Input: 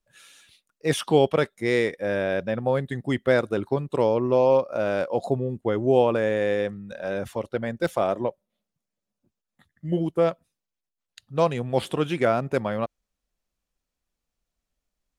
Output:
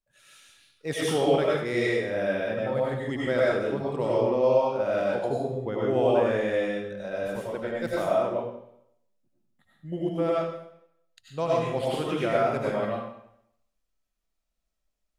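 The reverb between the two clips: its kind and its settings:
comb and all-pass reverb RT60 0.75 s, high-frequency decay 0.95×, pre-delay 55 ms, DRR −6 dB
level −8.5 dB

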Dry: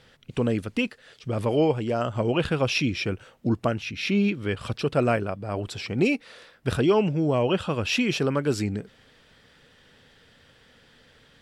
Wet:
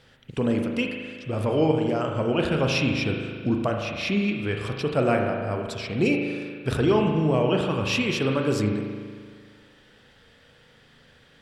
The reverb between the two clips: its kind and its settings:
spring reverb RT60 1.8 s, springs 38 ms, chirp 60 ms, DRR 2 dB
level −1 dB

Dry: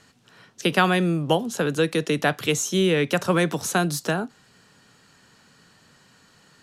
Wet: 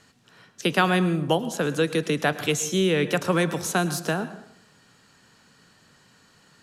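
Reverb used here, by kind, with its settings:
dense smooth reverb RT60 0.72 s, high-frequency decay 0.65×, pre-delay 95 ms, DRR 13.5 dB
level −1.5 dB

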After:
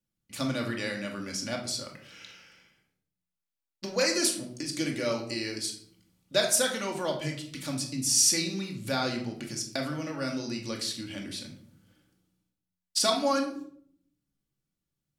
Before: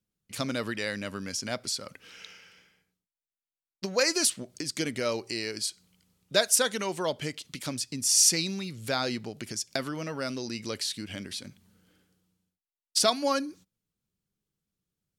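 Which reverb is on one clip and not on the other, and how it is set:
rectangular room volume 940 cubic metres, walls furnished, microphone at 2.4 metres
level −3.5 dB

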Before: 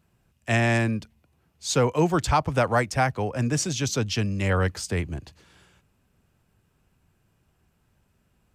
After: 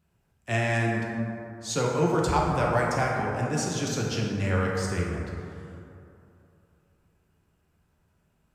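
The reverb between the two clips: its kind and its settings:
dense smooth reverb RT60 2.8 s, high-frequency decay 0.35×, DRR −2.5 dB
level −6.5 dB

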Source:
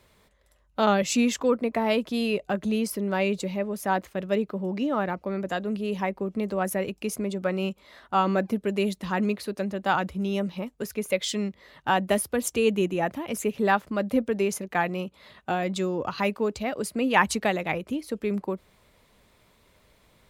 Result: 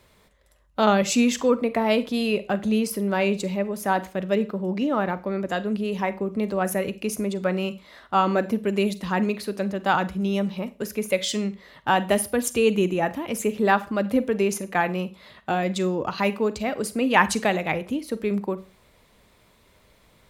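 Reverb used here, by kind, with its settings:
four-comb reverb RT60 0.32 s, combs from 33 ms, DRR 14 dB
level +2.5 dB

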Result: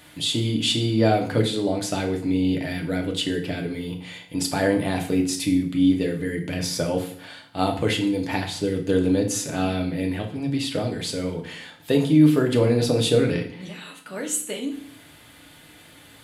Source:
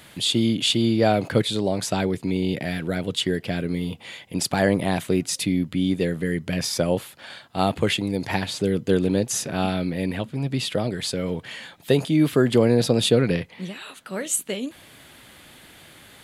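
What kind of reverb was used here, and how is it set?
feedback delay network reverb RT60 0.56 s, low-frequency decay 1.3×, high-frequency decay 0.9×, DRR 1.5 dB
level −3.5 dB

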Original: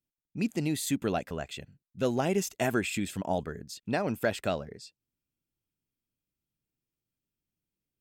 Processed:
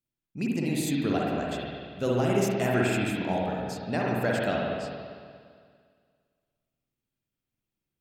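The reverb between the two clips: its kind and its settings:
spring reverb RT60 2 s, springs 49/57 ms, chirp 25 ms, DRR −3.5 dB
level −1.5 dB

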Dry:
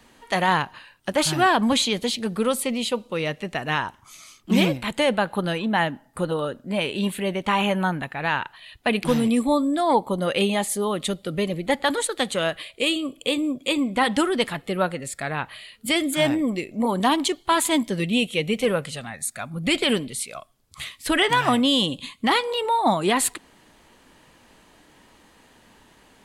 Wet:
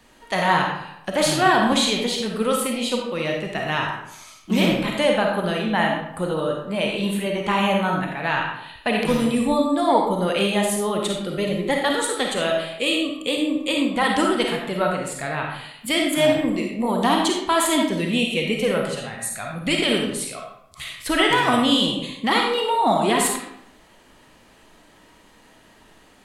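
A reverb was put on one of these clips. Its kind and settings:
comb and all-pass reverb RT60 0.79 s, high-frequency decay 0.7×, pre-delay 10 ms, DRR 0 dB
level −1 dB

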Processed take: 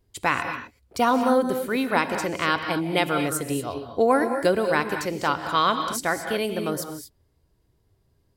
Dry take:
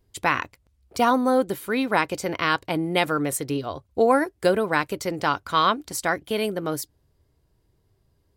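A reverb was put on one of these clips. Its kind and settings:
reverb whose tail is shaped and stops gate 260 ms rising, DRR 7 dB
level −1 dB

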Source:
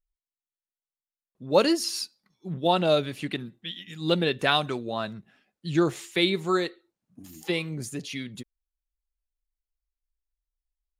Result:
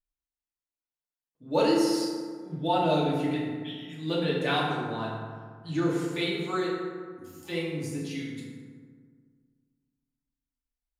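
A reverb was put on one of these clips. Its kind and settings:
feedback delay network reverb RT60 1.8 s, low-frequency decay 1.2×, high-frequency decay 0.45×, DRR −6 dB
level −10 dB

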